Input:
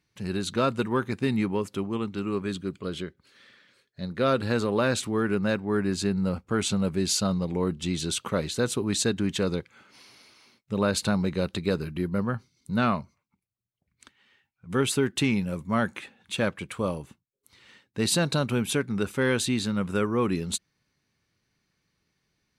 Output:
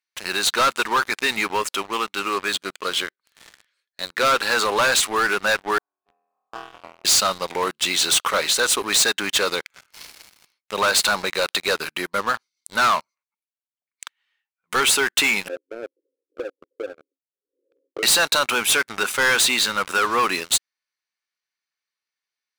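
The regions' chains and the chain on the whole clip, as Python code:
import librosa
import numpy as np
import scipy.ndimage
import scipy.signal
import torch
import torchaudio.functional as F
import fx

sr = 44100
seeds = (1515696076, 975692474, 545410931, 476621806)

y = fx.chain(x, sr, fx.level_steps(step_db=24),
    fx.formant_cascade(vowel='a'),
    fx.room_flutter(wall_m=4.1, rt60_s=1.2), at=(5.78, 7.05))
y = fx.chain(y, sr, fx.cheby1_bandpass(low_hz=270.0, high_hz=540.0, order=5),
    fx.band_squash(depth_pct=100), at=(15.48, 18.03))
y = scipy.signal.sosfilt(scipy.signal.butter(2, 980.0, 'highpass', fs=sr, output='sos'), y)
y = fx.leveller(y, sr, passes=5)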